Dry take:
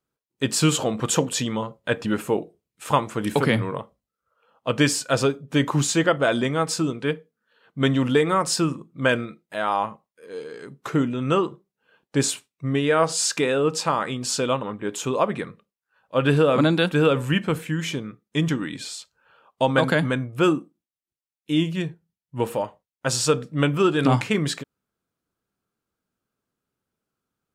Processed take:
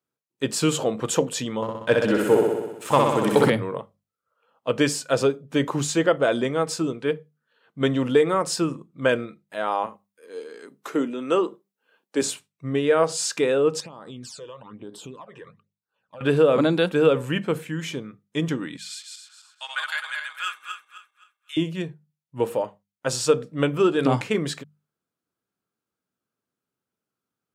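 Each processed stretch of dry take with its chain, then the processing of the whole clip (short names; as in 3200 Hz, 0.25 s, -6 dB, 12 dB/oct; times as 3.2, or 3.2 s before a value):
1.62–3.5 sample leveller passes 1 + flutter echo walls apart 10.8 m, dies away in 1.2 s
9.86–12.22 HPF 220 Hz 24 dB/oct + high shelf 8300 Hz +7.5 dB
13.8–16.21 high shelf 9600 Hz -7.5 dB + compressor 10:1, threshold -30 dBFS + phaser stages 12, 1.1 Hz, lowest notch 220–2400 Hz
18.77–21.57 regenerating reverse delay 0.13 s, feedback 55%, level -3 dB + HPF 1300 Hz 24 dB/oct + comb 4.8 ms, depth 33%
whole clip: HPF 98 Hz; notches 50/100/150/200 Hz; dynamic EQ 470 Hz, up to +6 dB, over -33 dBFS, Q 1.4; gain -3.5 dB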